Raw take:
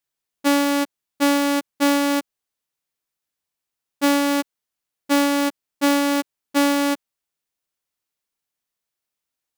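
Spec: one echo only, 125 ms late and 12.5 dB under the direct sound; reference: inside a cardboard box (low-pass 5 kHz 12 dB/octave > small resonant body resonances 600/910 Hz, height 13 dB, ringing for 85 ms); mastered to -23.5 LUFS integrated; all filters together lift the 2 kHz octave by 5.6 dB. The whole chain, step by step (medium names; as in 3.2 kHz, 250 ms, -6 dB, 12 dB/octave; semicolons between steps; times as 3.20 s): low-pass 5 kHz 12 dB/octave; peaking EQ 2 kHz +7 dB; delay 125 ms -12.5 dB; small resonant body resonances 600/910 Hz, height 13 dB, ringing for 85 ms; trim -5 dB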